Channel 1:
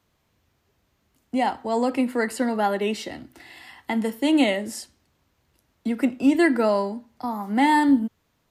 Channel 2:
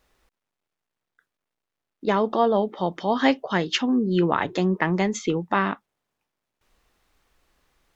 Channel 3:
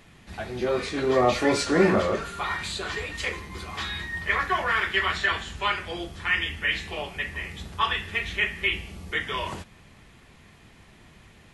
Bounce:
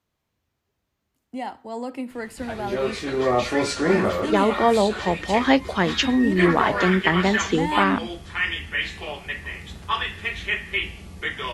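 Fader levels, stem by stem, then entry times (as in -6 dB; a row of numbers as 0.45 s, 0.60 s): -8.5 dB, +2.0 dB, 0.0 dB; 0.00 s, 2.25 s, 2.10 s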